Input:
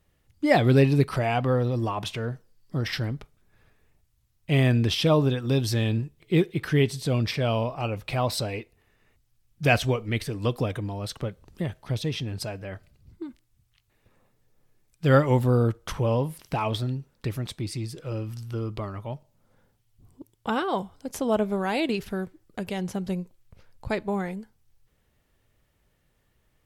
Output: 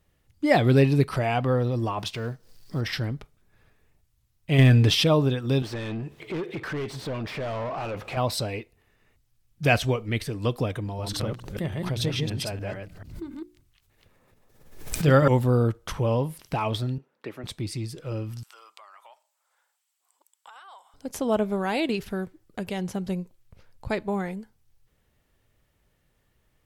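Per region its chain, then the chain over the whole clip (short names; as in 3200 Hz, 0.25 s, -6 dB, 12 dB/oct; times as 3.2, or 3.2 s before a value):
1.99–2.81 G.711 law mismatch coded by A + bell 4800 Hz +5.5 dB 0.7 oct + upward compressor, threshold -32 dBFS
4.58–5.04 comb 7 ms, depth 57% + sample leveller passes 1
5.62–8.17 compressor 2.5:1, threshold -43 dBFS + overdrive pedal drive 31 dB, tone 1100 Hz, clips at -21.5 dBFS + mismatched tape noise reduction encoder only
10.84–15.28 reverse delay 0.146 s, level -2 dB + notches 60/120/180/240/300/360 Hz + backwards sustainer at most 77 dB/s
16.98–17.44 HPF 130 Hz + three-band isolator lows -18 dB, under 250 Hz, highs -14 dB, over 2900 Hz
18.43–20.94 HPF 830 Hz 24 dB/oct + bell 7800 Hz +9.5 dB 0.27 oct + compressor 5:1, threshold -46 dBFS
whole clip: dry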